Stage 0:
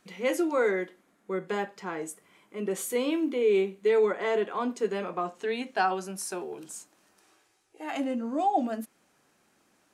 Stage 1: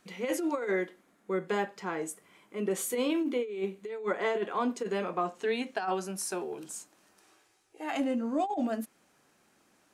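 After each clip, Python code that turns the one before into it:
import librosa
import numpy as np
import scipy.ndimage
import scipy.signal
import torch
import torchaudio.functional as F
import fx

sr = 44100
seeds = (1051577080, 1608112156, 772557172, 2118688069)

y = fx.over_compress(x, sr, threshold_db=-27.0, ratio=-0.5)
y = y * 10.0 ** (-1.5 / 20.0)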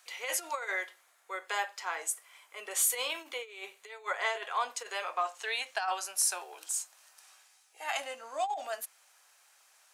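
y = scipy.signal.sosfilt(scipy.signal.butter(4, 670.0, 'highpass', fs=sr, output='sos'), x)
y = fx.high_shelf(y, sr, hz=2500.0, db=9.0)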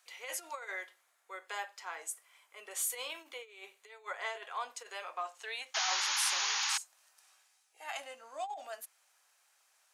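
y = fx.spec_paint(x, sr, seeds[0], shape='noise', start_s=5.74, length_s=1.04, low_hz=770.0, high_hz=7000.0, level_db=-26.0)
y = y * 10.0 ** (-7.0 / 20.0)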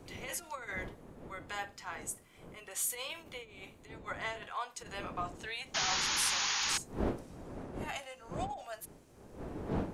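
y = fx.dmg_wind(x, sr, seeds[1], corner_hz=410.0, level_db=-45.0)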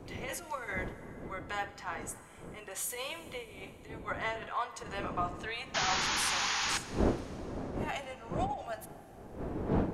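y = fx.high_shelf(x, sr, hz=2800.0, db=-8.5)
y = fx.rev_plate(y, sr, seeds[2], rt60_s=3.9, hf_ratio=0.75, predelay_ms=0, drr_db=13.5)
y = y * 10.0 ** (5.0 / 20.0)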